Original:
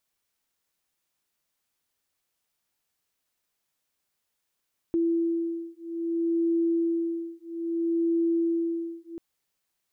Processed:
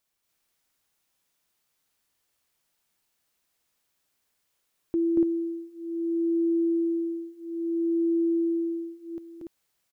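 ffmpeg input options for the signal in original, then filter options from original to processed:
-f lavfi -i "aevalsrc='0.0447*(sin(2*PI*334*t)+sin(2*PI*334.61*t))':duration=4.24:sample_rate=44100"
-af "aecho=1:1:233.2|288.6:0.891|0.891"

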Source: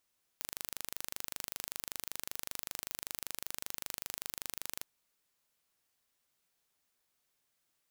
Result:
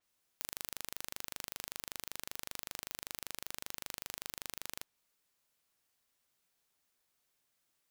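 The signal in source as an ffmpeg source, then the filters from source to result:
-f lavfi -i "aevalsrc='0.282*eq(mod(n,1750),0)':duration=4.41:sample_rate=44100"
-af "adynamicequalizer=threshold=0.00112:dfrequency=5800:dqfactor=0.7:tfrequency=5800:tqfactor=0.7:attack=5:release=100:ratio=0.375:range=2:mode=cutabove:tftype=highshelf"

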